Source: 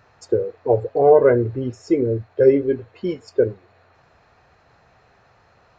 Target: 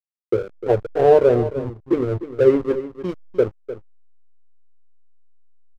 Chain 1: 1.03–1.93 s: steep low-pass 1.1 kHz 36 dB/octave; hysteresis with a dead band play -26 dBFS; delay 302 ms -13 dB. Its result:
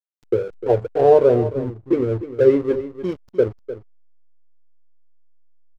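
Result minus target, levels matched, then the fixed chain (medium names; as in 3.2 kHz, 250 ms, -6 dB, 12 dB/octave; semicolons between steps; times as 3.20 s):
hysteresis with a dead band: distortion -6 dB
1.03–1.93 s: steep low-pass 1.1 kHz 36 dB/octave; hysteresis with a dead band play -19.5 dBFS; delay 302 ms -13 dB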